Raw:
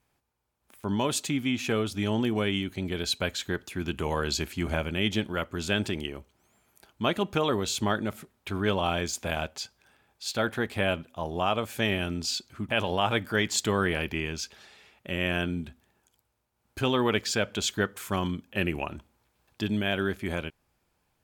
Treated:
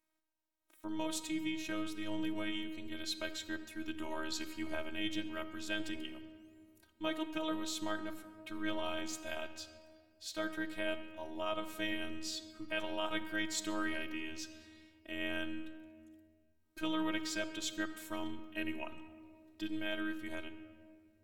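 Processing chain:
high-pass filter 78 Hz
phases set to zero 315 Hz
rectangular room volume 3,200 cubic metres, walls mixed, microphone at 0.8 metres
level −8.5 dB

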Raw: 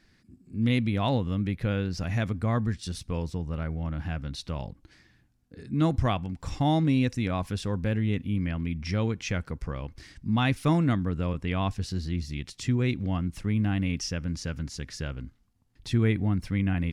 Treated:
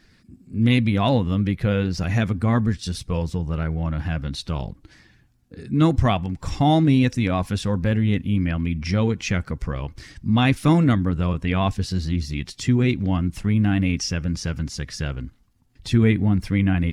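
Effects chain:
spectral magnitudes quantised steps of 15 dB
level +7 dB

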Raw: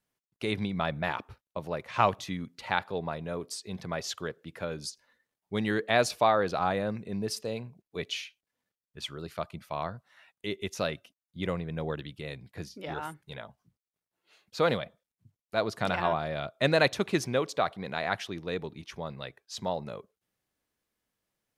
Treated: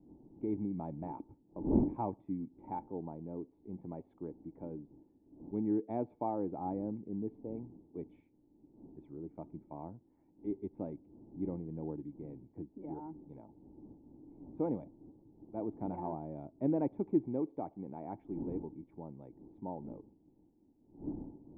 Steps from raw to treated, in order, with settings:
wind on the microphone 330 Hz −42 dBFS
formant resonators in series u
level +4 dB

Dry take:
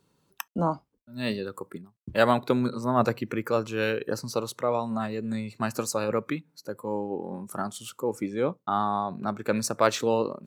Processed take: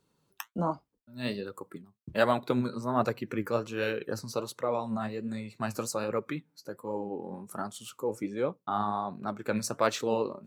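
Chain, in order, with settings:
flanger 1.3 Hz, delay 1.4 ms, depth 9.3 ms, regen +61%

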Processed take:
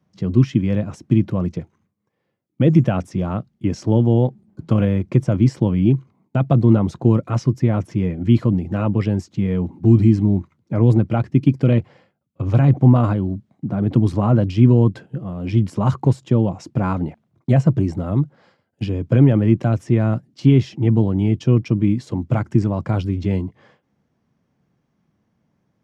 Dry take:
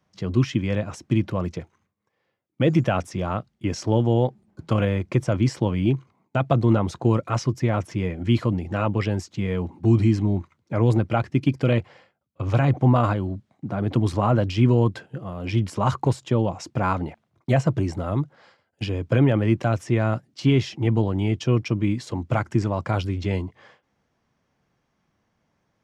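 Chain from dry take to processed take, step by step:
parametric band 180 Hz +11.5 dB 2.6 octaves
level −4 dB

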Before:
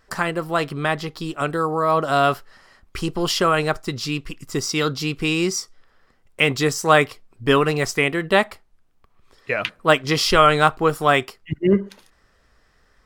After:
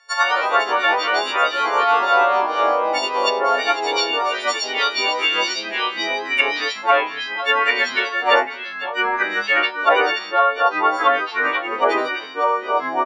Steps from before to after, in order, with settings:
every partial snapped to a pitch grid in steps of 4 semitones
high-pass filter 610 Hz 24 dB per octave
treble cut that deepens with the level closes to 960 Hz, closed at −11.5 dBFS
low-pass filter 6,200 Hz 24 dB per octave
single-tap delay 504 ms −12.5 dB
delay with pitch and tempo change per echo 83 ms, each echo −3 semitones, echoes 3
level +2 dB

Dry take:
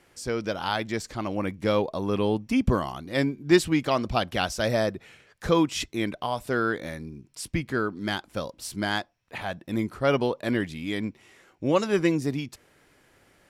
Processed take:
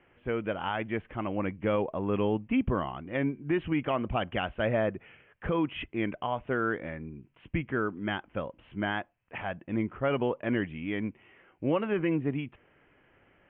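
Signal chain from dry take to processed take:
Butterworth low-pass 3,100 Hz 96 dB per octave
brickwall limiter −16 dBFS, peak gain reduction 8.5 dB
level −2.5 dB

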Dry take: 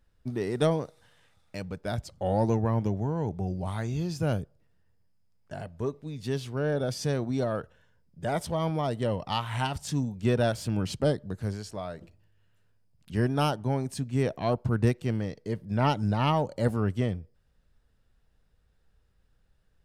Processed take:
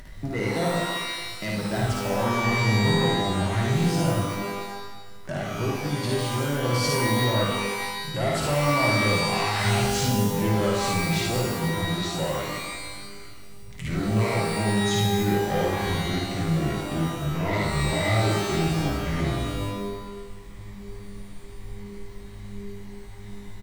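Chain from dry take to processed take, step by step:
gliding playback speed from 110% → 58%
parametric band 2,000 Hz +11 dB 0.2 octaves
notch filter 440 Hz
in parallel at +3 dB: upward compression, threshold −28 dBFS
on the sum: brickwall limiter −15.5 dBFS, peak gain reduction 11 dB
gain into a clipping stage and back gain 21 dB
flanger 1.3 Hz, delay 5 ms, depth 1.4 ms, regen −49%
on a send: ambience of single reflections 55 ms −3 dB, 74 ms −5 dB
on the sum: reverb with rising layers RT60 1.1 s, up +12 semitones, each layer −2 dB, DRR 2.5 dB

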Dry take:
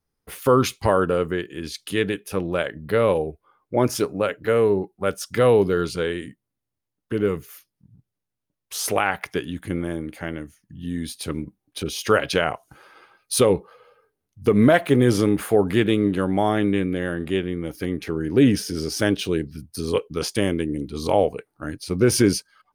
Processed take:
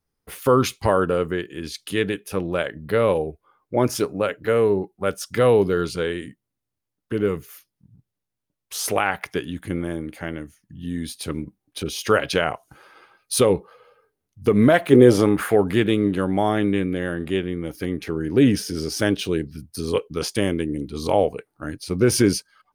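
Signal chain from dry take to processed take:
0:14.92–0:15.62: parametric band 320 Hz → 2,500 Hz +10.5 dB 1.1 octaves

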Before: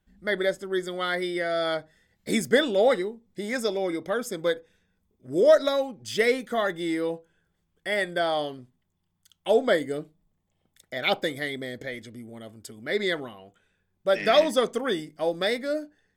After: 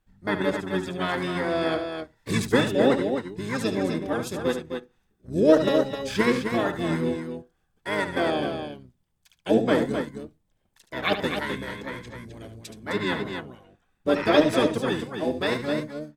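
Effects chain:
pitch-shifted copies added −12 semitones −2 dB, −5 semitones −5 dB, −4 semitones −15 dB
loudspeakers that aren't time-aligned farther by 25 metres −10 dB, 89 metres −7 dB
level −3 dB

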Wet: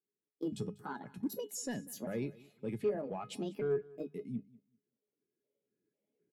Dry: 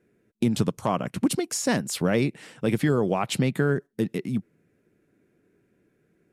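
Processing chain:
pitch shifter gated in a rhythm +5.5 semitones, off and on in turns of 258 ms
camcorder AGC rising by 5.9 dB per second
high-pass filter 80 Hz 24 dB per octave
high-shelf EQ 2,900 Hz +5 dB
mains-hum notches 50/100/150/200 Hz
tuned comb filter 420 Hz, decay 0.22 s, harmonics all, mix 70%
soft clipping −26.5 dBFS, distortion −14 dB
repeating echo 194 ms, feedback 30%, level −15 dB
every bin expanded away from the loudest bin 1.5 to 1
level +1.5 dB

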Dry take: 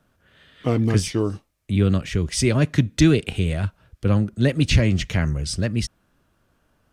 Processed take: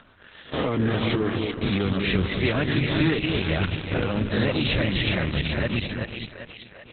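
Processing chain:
peak hold with a rise ahead of every peak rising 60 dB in 0.35 s
mains-hum notches 50/100/150 Hz
noise gate −40 dBFS, range −41 dB
low-shelf EQ 460 Hz −10 dB
upward compression, threshold −20 dBFS
leveller curve on the samples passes 2
downward compressor 4 to 1, threshold −31 dBFS, peak gain reduction 14 dB
brickwall limiter −25 dBFS, peak gain reduction 5.5 dB
echo with a time of its own for lows and highs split 450 Hz, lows 222 ms, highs 388 ms, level −3.5 dB
level +9 dB
Opus 8 kbit/s 48,000 Hz

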